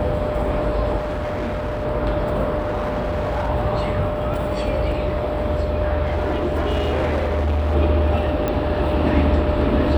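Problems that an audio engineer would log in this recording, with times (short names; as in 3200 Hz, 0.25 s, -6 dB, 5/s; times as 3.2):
tone 600 Hz -24 dBFS
0.97–1.86 clipped -21.5 dBFS
2.58–3.5 clipped -19 dBFS
4.34 gap 2.9 ms
6.05–7.76 clipped -17 dBFS
8.48 pop -10 dBFS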